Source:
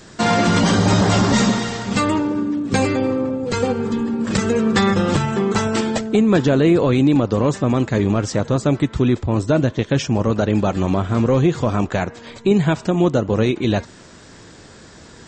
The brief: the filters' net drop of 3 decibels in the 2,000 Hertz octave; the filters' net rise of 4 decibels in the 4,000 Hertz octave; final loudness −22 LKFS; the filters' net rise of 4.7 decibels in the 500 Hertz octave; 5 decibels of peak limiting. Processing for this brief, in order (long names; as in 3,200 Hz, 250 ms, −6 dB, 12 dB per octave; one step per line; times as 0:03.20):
parametric band 500 Hz +6 dB
parametric band 2,000 Hz −6 dB
parametric band 4,000 Hz +6.5 dB
level −4.5 dB
brickwall limiter −11 dBFS